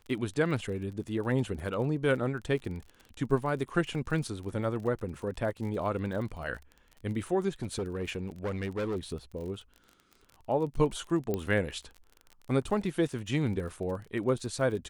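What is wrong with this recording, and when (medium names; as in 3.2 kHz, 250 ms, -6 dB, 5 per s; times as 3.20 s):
crackle 33 per s -39 dBFS
7.62–8.96 s: clipped -28.5 dBFS
11.34 s: pop -18 dBFS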